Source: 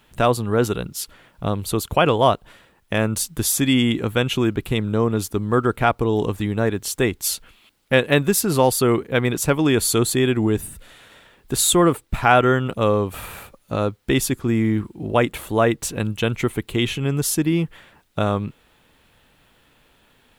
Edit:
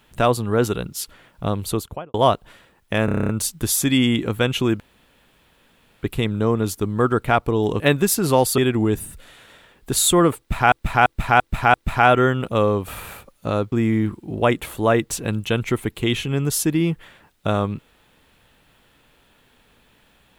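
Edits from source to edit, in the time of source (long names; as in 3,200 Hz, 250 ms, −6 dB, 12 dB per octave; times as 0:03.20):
0:01.66–0:02.14: fade out and dull
0:03.05: stutter 0.03 s, 9 plays
0:04.56: splice in room tone 1.23 s
0:06.33–0:08.06: remove
0:08.84–0:10.20: remove
0:12.00–0:12.34: repeat, 5 plays
0:13.98–0:14.44: remove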